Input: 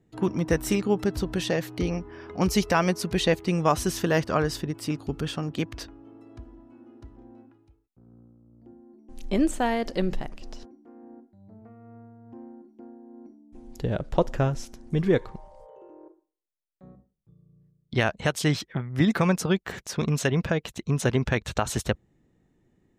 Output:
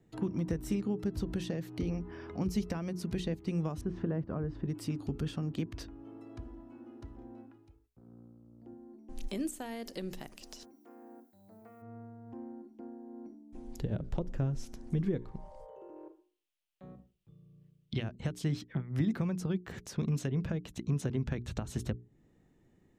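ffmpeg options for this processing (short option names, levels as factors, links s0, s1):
-filter_complex "[0:a]asettb=1/sr,asplit=3[s0][s1][s2];[s0]atrim=end=3.814[s3];[s1]atrim=start=3.81:end=4.65,asetpts=PTS-STARTPTS,afade=t=in:d=0.004:c=qsin,afade=t=out:st=0.836:d=0.004:c=qsin,lowpass=1400[s4];[s2]atrim=start=4.646[s5];[s3][s4]acrossfade=d=0.004:c1=hsin:c2=qsin[s6];[s6][s5]acrossfade=d=0.004:c1=qsin:c2=hsin,asplit=3[s7][s8][s9];[s7]afade=t=out:st=9.27:d=0.02[s10];[s8]aemphasis=mode=production:type=riaa,afade=t=in:st=9.27:d=0.02,afade=t=out:st=11.81:d=0.02[s11];[s9]afade=t=in:st=11.81:d=0.02[s12];[s10][s11][s12]amix=inputs=3:normalize=0,asettb=1/sr,asplit=3[s13][s14][s15];[s13]atrim=end=15.964[s16];[s14]atrim=start=15.96:end=18.03,asetpts=PTS-STARTPTS,afade=t=in:d=0.004:c=qsin,afade=t=out:st=2.066:d=0.004:c=qsin,equalizer=f=2900:t=o:w=0.8:g=11.5[s17];[s15]atrim=start=18.026[s18];[s16][s17]acrossfade=d=0.004:c1=hsin:c2=qsin[s19];[s19][s18]acrossfade=d=0.004:c1=qsin:c2=hsin,acompressor=threshold=0.0316:ratio=2,bandreject=f=60:t=h:w=6,bandreject=f=120:t=h:w=6,bandreject=f=180:t=h:w=6,bandreject=f=240:t=h:w=6,bandreject=f=300:t=h:w=6,bandreject=f=360:t=h:w=6,bandreject=f=420:t=h:w=6,acrossover=split=350[s20][s21];[s21]acompressor=threshold=0.00316:ratio=2.5[s22];[s20][s22]amix=inputs=2:normalize=0"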